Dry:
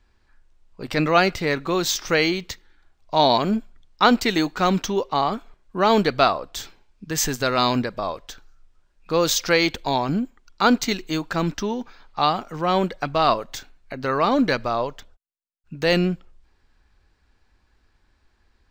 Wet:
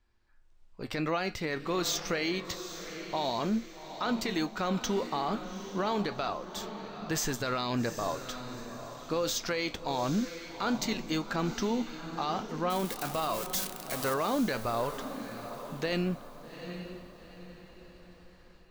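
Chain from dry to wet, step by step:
0:12.70–0:14.14: spike at every zero crossing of −18.5 dBFS
automatic gain control gain up to 15 dB
flanger 0.26 Hz, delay 8.5 ms, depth 1.5 ms, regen +72%
brickwall limiter −15.5 dBFS, peak gain reduction 11 dB
feedback delay with all-pass diffusion 806 ms, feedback 41%, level −10 dB
level −6.5 dB

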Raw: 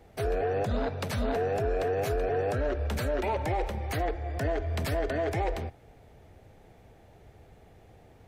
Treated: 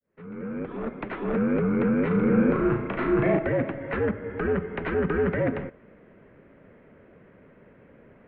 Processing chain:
fade in at the beginning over 1.62 s
0:02.07–0:03.39: flutter between parallel walls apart 6.3 metres, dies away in 0.5 s
single-sideband voice off tune −240 Hz 320–2,700 Hz
level +6.5 dB

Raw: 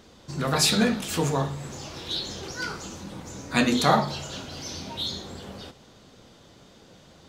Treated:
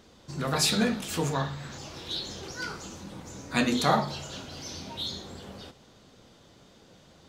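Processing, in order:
0:01.33–0:01.78: graphic EQ with 15 bands 400 Hz −5 dB, 1,600 Hz +8 dB, 4,000 Hz +7 dB, 10,000 Hz −11 dB
level −3.5 dB

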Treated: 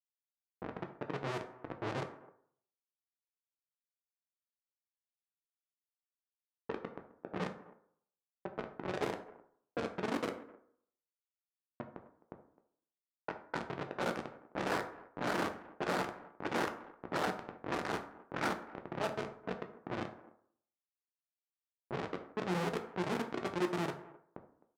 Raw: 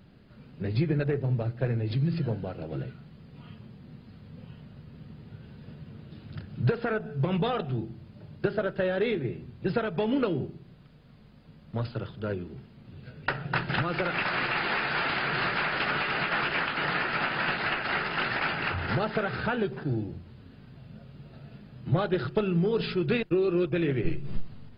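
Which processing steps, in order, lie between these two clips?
running median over 15 samples
tube saturation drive 16 dB, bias 0.35
two-band tremolo in antiphase 1.6 Hz, depth 100%, crossover 450 Hz
double-tracking delay 47 ms −6.5 dB
comparator with hysteresis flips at −28 dBFS
high-pass filter 290 Hz 12 dB per octave
far-end echo of a speakerphone 260 ms, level −18 dB
low-pass that shuts in the quiet parts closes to 830 Hz, open at −38 dBFS
low-pass filter 3,200 Hz 6 dB per octave
convolution reverb RT60 0.65 s, pre-delay 3 ms, DRR 4.5 dB
level +7 dB

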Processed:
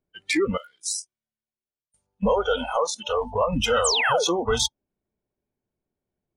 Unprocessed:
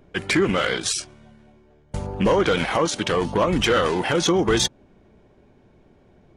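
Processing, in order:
0:00.57–0:02.23: first-order pre-emphasis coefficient 0.9
0:03.84–0:04.25: sound drawn into the spectrogram fall 350–9,000 Hz −21 dBFS
noise reduction from a noise print of the clip's start 29 dB
level −1.5 dB

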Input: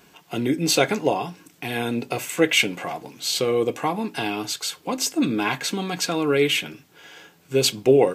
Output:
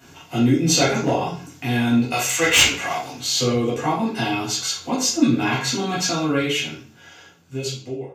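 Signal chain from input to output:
fade-out on the ending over 2.23 s
0:02.12–0:03.11: tilt shelving filter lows −8.5 dB, about 680 Hz
in parallel at −0.5 dB: downward compressor, threshold −34 dBFS, peak gain reduction 24.5 dB
on the sum: wave folding −7 dBFS
convolution reverb RT60 0.45 s, pre-delay 3 ms, DRR −6.5 dB
level −10.5 dB

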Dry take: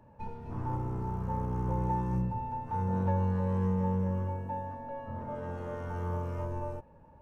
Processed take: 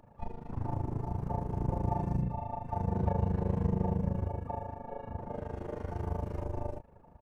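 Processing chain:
amplitude modulation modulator 26 Hz, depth 90%
pitch-shifted copies added −7 semitones −13 dB, −4 semitones −5 dB, +5 semitones −15 dB
dynamic equaliser 1,300 Hz, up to −7 dB, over −57 dBFS, Q 2.4
level +1.5 dB

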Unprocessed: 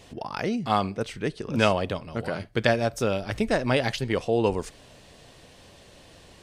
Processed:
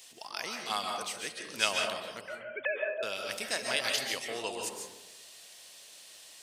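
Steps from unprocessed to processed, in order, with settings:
0:02.21–0:03.03: three sine waves on the formant tracks
first difference
comb and all-pass reverb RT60 0.99 s, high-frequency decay 0.3×, pre-delay 100 ms, DRR 1.5 dB
level +6.5 dB

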